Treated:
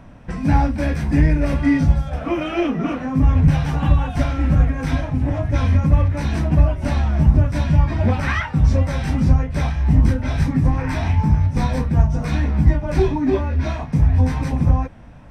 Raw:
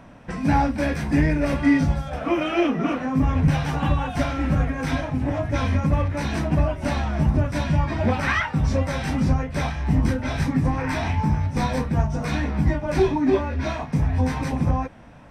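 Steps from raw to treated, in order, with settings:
low-shelf EQ 130 Hz +11.5 dB
level −1 dB

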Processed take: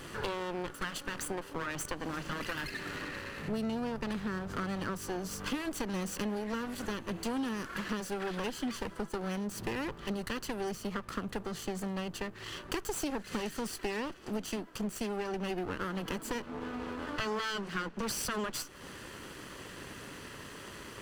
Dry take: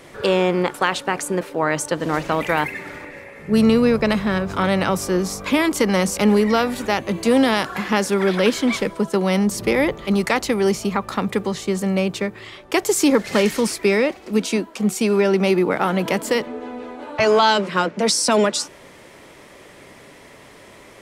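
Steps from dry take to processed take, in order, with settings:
lower of the sound and its delayed copy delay 0.66 ms
downward compressor 4 to 1, threshold −36 dBFS, peak gain reduction 19 dB

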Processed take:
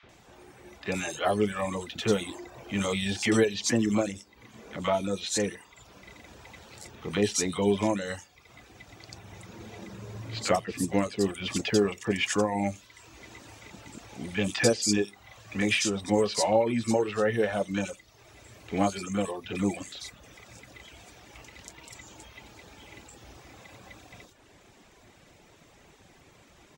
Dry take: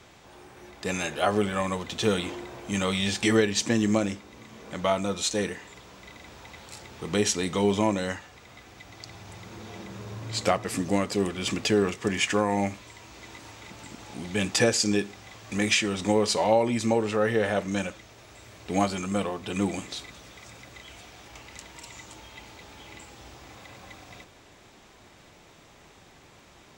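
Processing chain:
reverb reduction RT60 0.75 s
three-band delay without the direct sound mids, lows, highs 30/90 ms, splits 1,100/4,000 Hz

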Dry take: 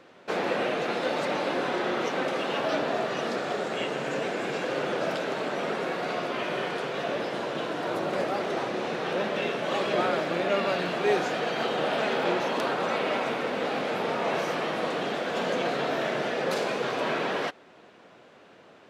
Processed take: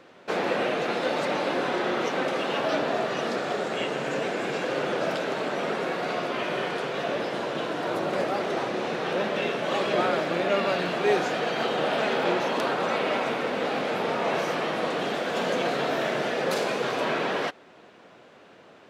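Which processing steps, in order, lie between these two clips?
0:14.99–0:17.05: high-shelf EQ 8,900 Hz +5.5 dB
level +1.5 dB

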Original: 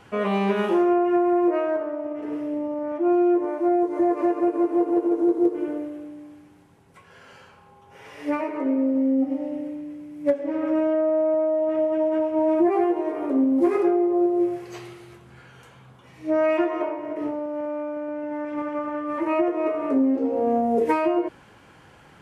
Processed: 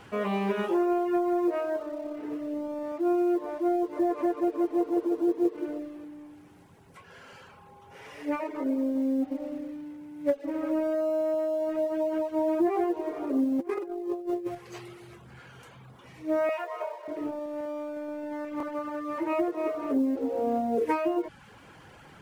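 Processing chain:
mu-law and A-law mismatch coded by mu
reverb reduction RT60 0.51 s
0:13.59–0:14.55: compressor whose output falls as the input rises −26 dBFS, ratio −0.5
0:16.49–0:17.08: elliptic high-pass filter 450 Hz, stop band 40 dB
buffer that repeats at 0:18.58, samples 1,024, times 1
level −5 dB

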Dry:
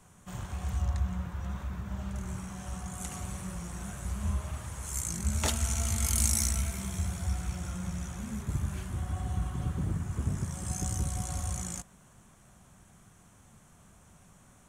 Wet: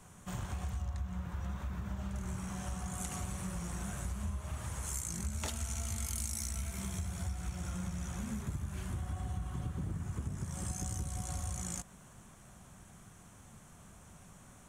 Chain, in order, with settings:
downward compressor, threshold −37 dBFS, peak gain reduction 14.5 dB
level +2 dB

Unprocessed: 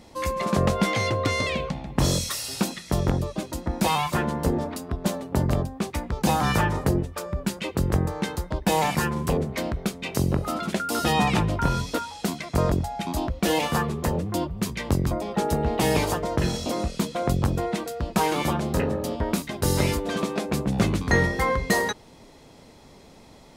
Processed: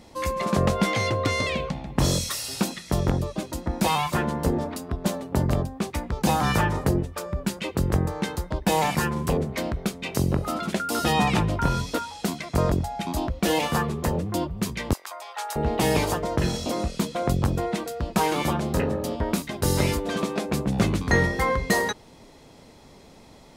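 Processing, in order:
0:14.93–0:15.56: high-pass filter 850 Hz 24 dB per octave

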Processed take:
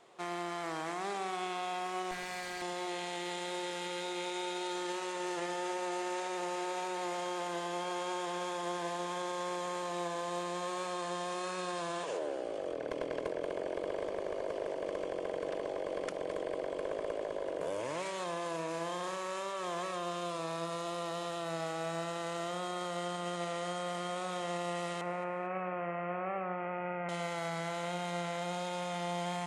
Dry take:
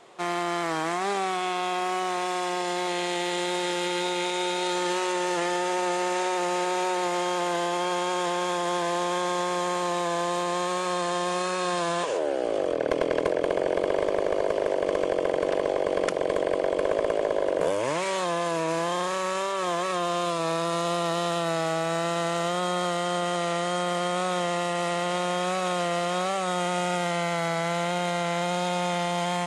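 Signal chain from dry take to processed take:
0:02.11–0:02.62: lower of the sound and its delayed copy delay 5.1 ms
0:25.01–0:27.09: Butterworth low-pass 2,600 Hz 72 dB per octave
brickwall limiter −19.5 dBFS, peak gain reduction 4 dB
delay that swaps between a low-pass and a high-pass 114 ms, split 920 Hz, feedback 54%, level −10 dB
level −9 dB

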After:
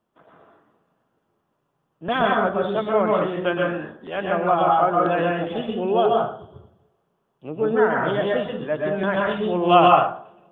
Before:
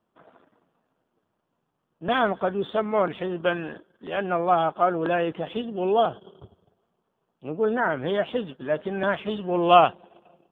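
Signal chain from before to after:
dense smooth reverb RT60 0.51 s, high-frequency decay 0.5×, pre-delay 110 ms, DRR −1.5 dB

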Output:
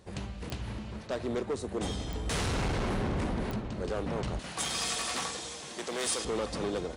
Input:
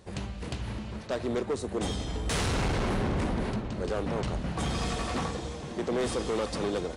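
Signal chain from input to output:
0:04.39–0:06.25: spectral tilt +4 dB per octave
digital clicks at 0:00.50/0:02.13/0:03.51, −21 dBFS
level −2.5 dB

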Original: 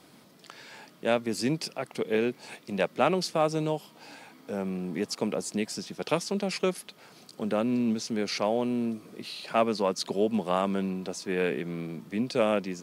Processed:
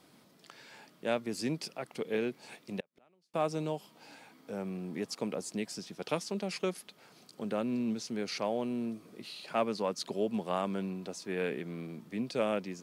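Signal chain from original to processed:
0:02.80–0:03.34: gate with flip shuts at −28 dBFS, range −37 dB
level −6 dB

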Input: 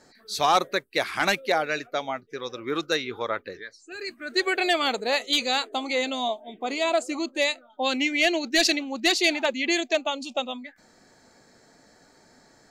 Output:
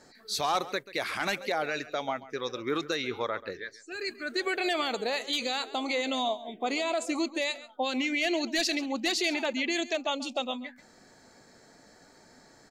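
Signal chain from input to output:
brickwall limiter −20 dBFS, peak gain reduction 7.5 dB
on a send: single-tap delay 136 ms −17 dB

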